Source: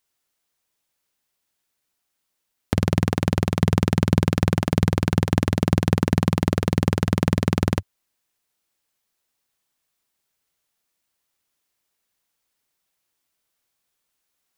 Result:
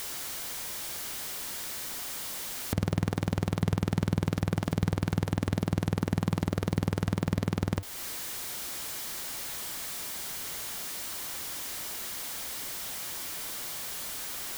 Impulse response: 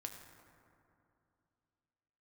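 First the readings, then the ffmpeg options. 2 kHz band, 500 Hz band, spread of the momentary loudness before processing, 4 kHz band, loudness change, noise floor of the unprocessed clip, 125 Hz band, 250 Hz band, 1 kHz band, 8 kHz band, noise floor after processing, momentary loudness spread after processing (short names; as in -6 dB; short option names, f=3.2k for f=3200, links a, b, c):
-5.5 dB, -8.5 dB, 2 LU, -1.0 dB, -10.0 dB, -77 dBFS, -7.5 dB, -8.5 dB, -7.5 dB, +5.5 dB, -41 dBFS, 4 LU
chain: -af "aeval=exprs='val(0)+0.5*0.0282*sgn(val(0))':c=same,bandreject=f=2.6k:w=21,alimiter=limit=-14dB:level=0:latency=1:release=271"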